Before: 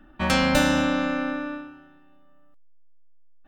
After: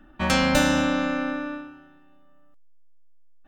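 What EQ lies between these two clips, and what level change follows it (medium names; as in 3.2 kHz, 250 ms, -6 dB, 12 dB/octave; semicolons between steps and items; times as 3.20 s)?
peaking EQ 6.6 kHz +3 dB 0.42 oct; 0.0 dB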